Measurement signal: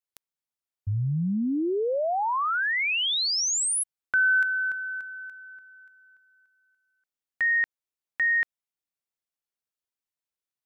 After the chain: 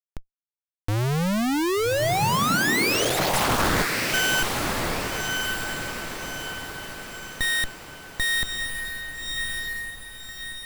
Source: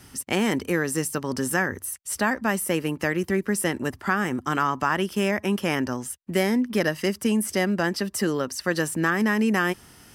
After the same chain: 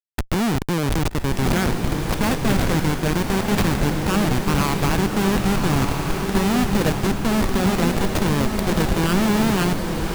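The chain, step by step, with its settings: tracing distortion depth 0.21 ms; Schmitt trigger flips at -23.5 dBFS; diffused feedback echo 1.203 s, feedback 49%, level -3 dB; gain +5.5 dB

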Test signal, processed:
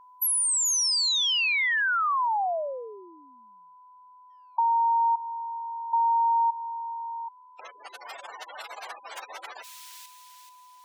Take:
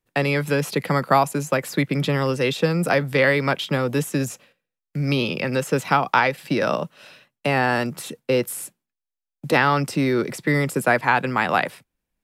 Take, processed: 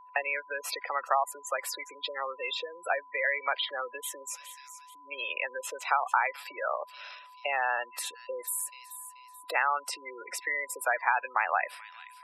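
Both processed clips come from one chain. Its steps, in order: compressor 2.5:1, threshold -23 dBFS; thin delay 0.433 s, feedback 41%, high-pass 2900 Hz, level -11 dB; spectral gate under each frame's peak -15 dB strong; inverse Chebyshev high-pass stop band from 150 Hz, stop band 70 dB; whine 1000 Hz -50 dBFS

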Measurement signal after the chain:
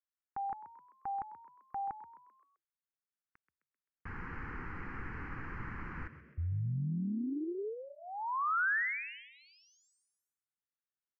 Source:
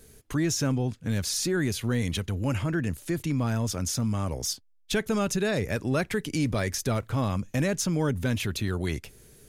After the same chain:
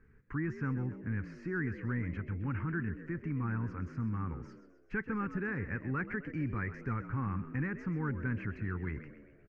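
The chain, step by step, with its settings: ladder low-pass 2300 Hz, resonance 30%; fixed phaser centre 1500 Hz, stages 4; frequency-shifting echo 0.13 s, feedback 48%, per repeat +66 Hz, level -13 dB

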